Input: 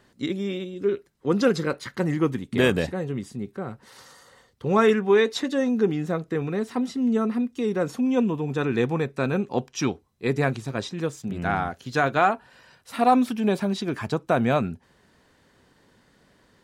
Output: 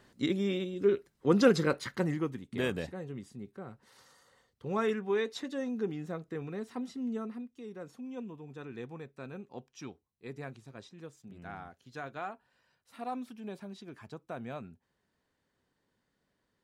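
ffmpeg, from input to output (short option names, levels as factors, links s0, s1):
-af "volume=0.75,afade=t=out:st=1.81:d=0.47:silence=0.334965,afade=t=out:st=7.01:d=0.53:silence=0.421697"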